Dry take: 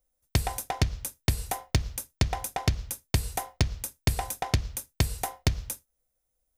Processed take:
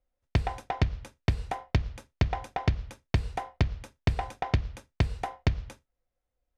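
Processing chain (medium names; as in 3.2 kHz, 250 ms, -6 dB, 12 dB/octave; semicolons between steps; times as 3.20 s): low-pass 2.8 kHz 12 dB/octave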